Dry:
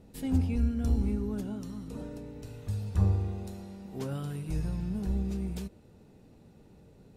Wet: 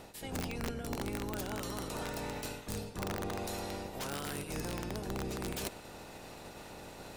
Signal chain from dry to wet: spectral peaks clipped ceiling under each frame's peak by 22 dB; reverse; compression 8:1, threshold -43 dBFS, peak gain reduction 22.5 dB; reverse; integer overflow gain 36.5 dB; trim +7.5 dB

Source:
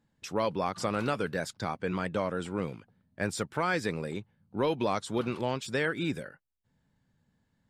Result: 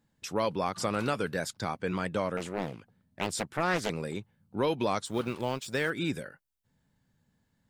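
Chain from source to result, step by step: 5.06–5.90 s: companding laws mixed up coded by A; treble shelf 6 kHz +6 dB; 2.37–3.90 s: loudspeaker Doppler distortion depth 0.88 ms

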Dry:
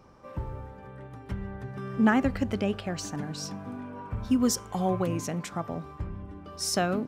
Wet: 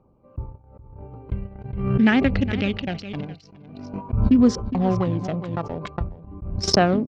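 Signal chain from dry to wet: local Wiener filter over 25 samples; low-pass 4.7 kHz 24 dB/octave; gate -34 dBFS, range -41 dB; 1.31–3.85 s: resonant high shelf 1.6 kHz +8.5 dB, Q 1.5; level rider gain up to 11.5 dB; phaser 0.44 Hz, delay 2.3 ms, feedback 36%; delay 413 ms -17 dB; swell ahead of each attack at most 49 dB/s; trim -5.5 dB

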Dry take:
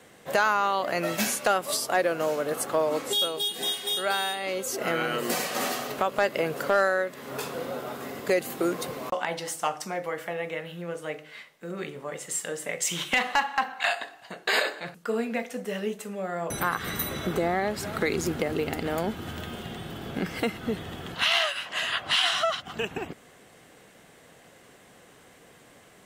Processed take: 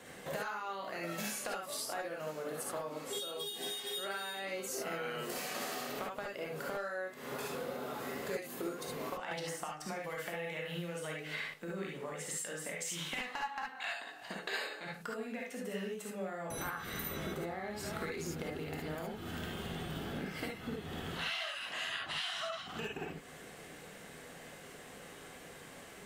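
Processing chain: compression 6:1, threshold -40 dBFS, peak gain reduction 20.5 dB; gated-style reverb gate 90 ms rising, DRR -1.5 dB; 9.31–11.54 s: three bands compressed up and down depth 100%; trim -1 dB

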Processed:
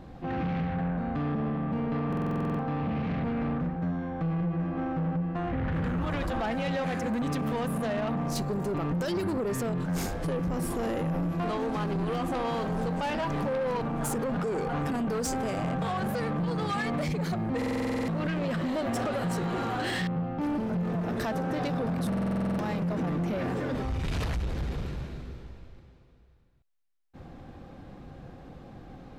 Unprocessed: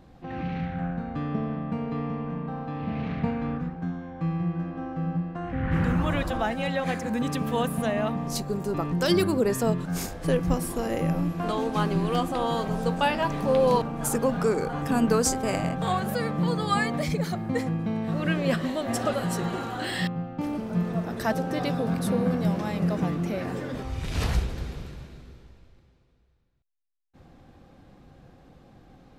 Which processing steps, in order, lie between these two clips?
treble shelf 3.7 kHz -7 dB; in parallel at -2 dB: compression, threshold -32 dBFS, peak gain reduction 14 dB; on the sum: peak limiter -19 dBFS, peak gain reduction 10 dB; saturation -27 dBFS, distortion -12 dB; buffer glitch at 2.08/17.57/22.08 s, samples 2048, times 10; trim +1.5 dB

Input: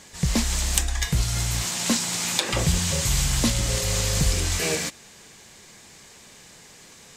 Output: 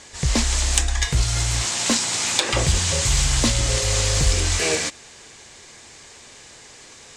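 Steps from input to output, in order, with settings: low-pass 9.3 kHz 24 dB/octave; peaking EQ 180 Hz -12 dB 0.48 oct; in parallel at -4 dB: one-sided clip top -17 dBFS

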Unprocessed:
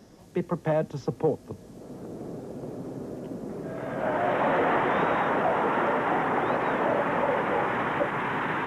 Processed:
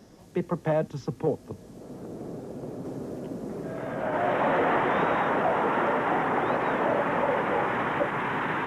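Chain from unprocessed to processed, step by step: 0.87–1.27 s: peaking EQ 600 Hz -8 dB 1 oct; 2.85–4.13 s: three bands compressed up and down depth 40%

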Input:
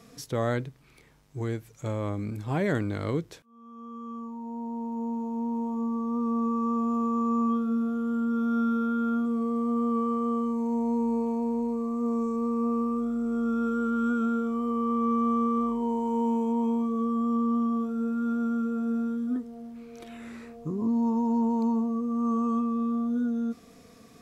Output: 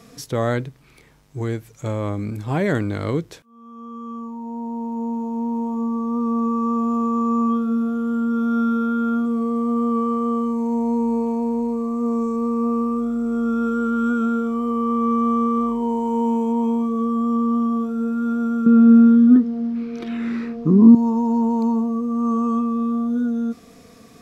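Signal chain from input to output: 18.66–20.95 s: FFT filter 130 Hz 0 dB, 190 Hz +14 dB, 420 Hz +7 dB, 620 Hz 0 dB, 1.3 kHz +7 dB, 3.1 kHz +4 dB, 5.2 kHz +3 dB, 7.8 kHz -10 dB; trim +6 dB

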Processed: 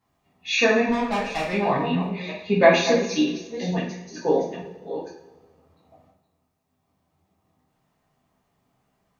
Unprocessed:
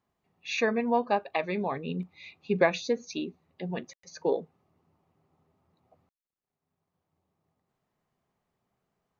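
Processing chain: chunks repeated in reverse 462 ms, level -11 dB; 0.89–1.53 s: valve stage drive 28 dB, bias 0.75; 3.66–4.39 s: treble shelf 4.8 kHz -11 dB; two-slope reverb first 0.5 s, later 1.6 s, from -17 dB, DRR -7.5 dB; trim +1.5 dB

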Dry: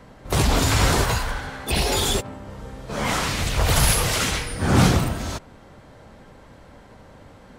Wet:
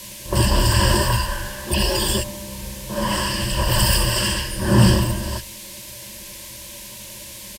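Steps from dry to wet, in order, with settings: rippled EQ curve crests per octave 1.3, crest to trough 17 dB; bands offset in time lows, highs 30 ms, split 1.6 kHz; band noise 2–14 kHz -37 dBFS; band-stop 650 Hz, Q 12; trim -1 dB

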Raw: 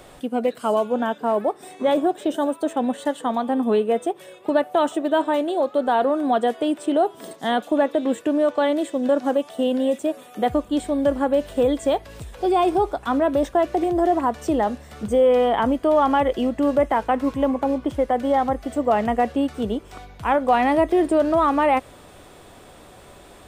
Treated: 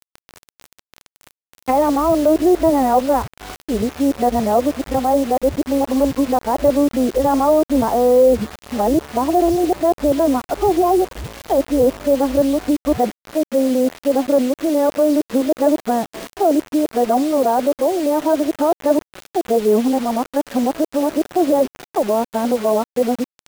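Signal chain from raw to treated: reverse the whole clip; low-pass that closes with the level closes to 800 Hz, closed at -19.5 dBFS; word length cut 6-bit, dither none; trim +5 dB

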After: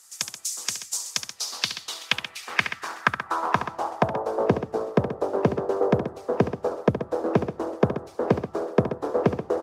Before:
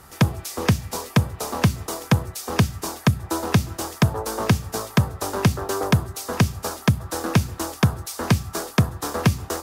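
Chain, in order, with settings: band-pass sweep 7.1 kHz -> 480 Hz, 0.97–4.52 s; loudspeakers at several distances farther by 24 m -9 dB, 45 m -11 dB; harmonic-percussive split percussive +7 dB; trim +3 dB

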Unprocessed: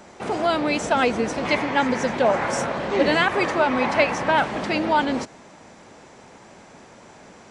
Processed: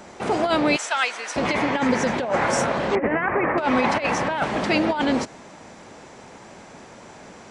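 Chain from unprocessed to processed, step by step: 0.76–1.36 s: high-pass 1.3 kHz 12 dB/octave; compressor with a negative ratio -21 dBFS, ratio -0.5; 2.95–3.58 s: steep low-pass 2.3 kHz 48 dB/octave; trim +1.5 dB

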